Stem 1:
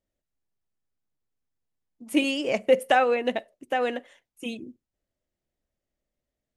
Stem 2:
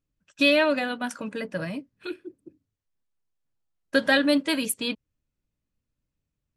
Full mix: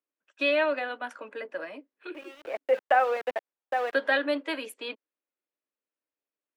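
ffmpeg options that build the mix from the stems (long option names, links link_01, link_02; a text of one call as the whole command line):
ffmpeg -i stem1.wav -i stem2.wav -filter_complex "[0:a]highpass=88,acrossover=split=470 2100:gain=0.2 1 0.224[link_01][link_02][link_03];[link_01][link_02][link_03]amix=inputs=3:normalize=0,aeval=exprs='val(0)*gte(abs(val(0)),0.0237)':channel_layout=same,volume=0.5dB[link_04];[1:a]highpass=frequency=290:width=0.5412,highpass=frequency=290:width=1.3066,volume=-2.5dB,asplit=2[link_05][link_06];[link_06]apad=whole_len=289669[link_07];[link_04][link_07]sidechaincompress=threshold=-48dB:ratio=3:attack=16:release=554[link_08];[link_08][link_05]amix=inputs=2:normalize=0,acrossover=split=300 3100:gain=0.178 1 0.158[link_09][link_10][link_11];[link_09][link_10][link_11]amix=inputs=3:normalize=0" out.wav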